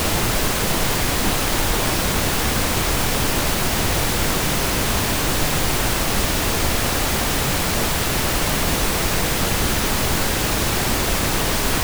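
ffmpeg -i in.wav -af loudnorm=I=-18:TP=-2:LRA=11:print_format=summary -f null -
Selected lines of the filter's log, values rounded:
Input Integrated:    -19.4 LUFS
Input True Peak:      -6.5 dBTP
Input LRA:             0.1 LU
Input Threshold:     -29.4 LUFS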